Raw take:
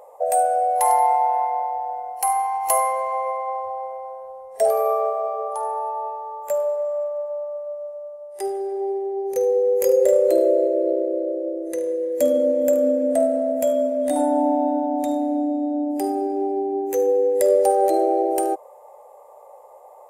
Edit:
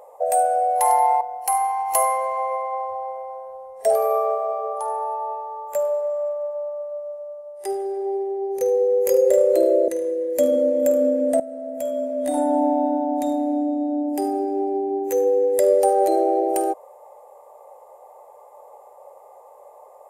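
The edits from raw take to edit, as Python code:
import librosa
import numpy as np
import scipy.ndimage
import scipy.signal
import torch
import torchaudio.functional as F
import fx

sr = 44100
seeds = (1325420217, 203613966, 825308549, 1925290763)

y = fx.edit(x, sr, fx.cut(start_s=1.21, length_s=0.75),
    fx.cut(start_s=10.63, length_s=1.07),
    fx.fade_in_from(start_s=13.22, length_s=1.16, floor_db=-16.0), tone=tone)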